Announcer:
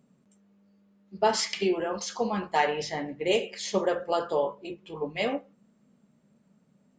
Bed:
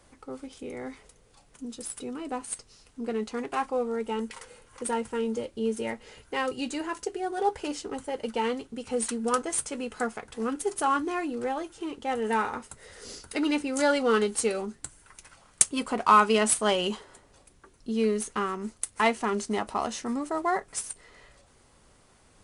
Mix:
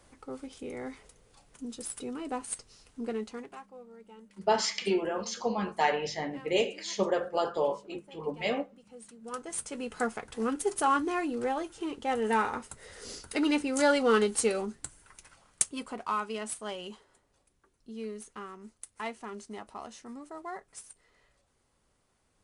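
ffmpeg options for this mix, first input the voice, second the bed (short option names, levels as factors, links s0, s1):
-filter_complex "[0:a]adelay=3250,volume=0.794[s0];[1:a]volume=8.91,afade=t=out:st=2.99:d=0.63:silence=0.105925,afade=t=in:st=9.19:d=0.88:silence=0.0944061,afade=t=out:st=14.63:d=1.53:silence=0.223872[s1];[s0][s1]amix=inputs=2:normalize=0"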